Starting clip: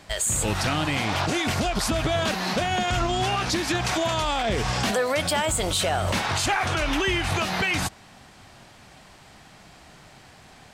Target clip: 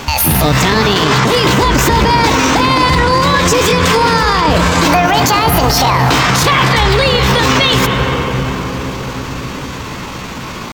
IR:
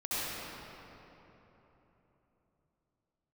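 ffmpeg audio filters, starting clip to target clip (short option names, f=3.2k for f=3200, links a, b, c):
-filter_complex "[0:a]equalizer=f=7.3k:t=o:w=0.55:g=-12.5,acompressor=threshold=-27dB:ratio=20,asetrate=62367,aresample=44100,atempo=0.707107,asplit=2[a][b];[1:a]atrim=start_sample=2205,asetrate=25578,aresample=44100,lowpass=3k[c];[b][c]afir=irnorm=-1:irlink=0,volume=-15.5dB[d];[a][d]amix=inputs=2:normalize=0,alimiter=level_in=24dB:limit=-1dB:release=50:level=0:latency=1,volume=-1dB"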